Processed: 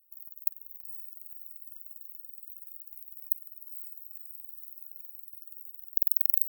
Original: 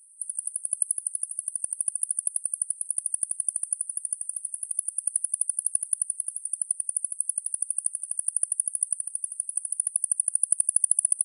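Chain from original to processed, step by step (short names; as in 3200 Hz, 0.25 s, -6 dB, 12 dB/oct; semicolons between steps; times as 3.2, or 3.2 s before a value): level quantiser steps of 22 dB; speed mistake 45 rpm record played at 78 rpm; diffused feedback echo 0.49 s, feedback 66%, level -10 dB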